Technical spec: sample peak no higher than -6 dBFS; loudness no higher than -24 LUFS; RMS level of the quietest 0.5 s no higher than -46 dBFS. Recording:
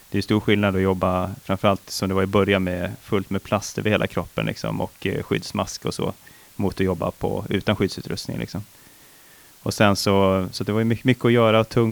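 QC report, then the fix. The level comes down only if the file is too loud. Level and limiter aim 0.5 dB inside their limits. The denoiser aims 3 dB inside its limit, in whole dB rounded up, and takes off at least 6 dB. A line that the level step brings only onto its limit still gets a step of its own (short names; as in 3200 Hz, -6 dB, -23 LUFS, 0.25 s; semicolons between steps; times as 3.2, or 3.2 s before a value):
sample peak -3.5 dBFS: fail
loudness -22.5 LUFS: fail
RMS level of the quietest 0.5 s -49 dBFS: OK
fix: gain -2 dB; limiter -6.5 dBFS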